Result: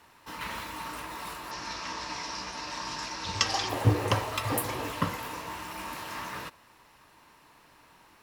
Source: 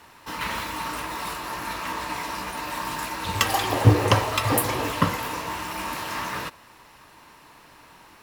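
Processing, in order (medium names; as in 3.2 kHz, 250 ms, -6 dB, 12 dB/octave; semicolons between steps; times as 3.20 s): 1.51–3.69 s: resonant low-pass 5.5 kHz, resonance Q 4.2; trim -7.5 dB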